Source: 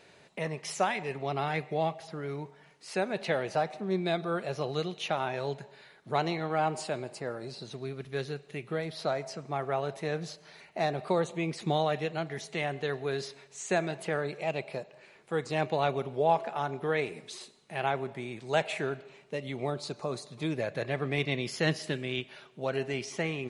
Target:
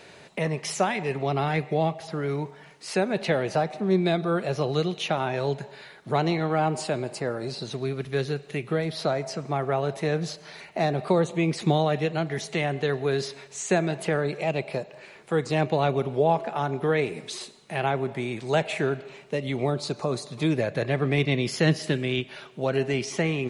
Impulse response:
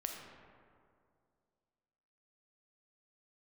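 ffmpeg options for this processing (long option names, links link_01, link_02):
-filter_complex "[0:a]acrossover=split=400[link_01][link_02];[link_02]acompressor=threshold=-43dB:ratio=1.5[link_03];[link_01][link_03]amix=inputs=2:normalize=0,volume=9dB"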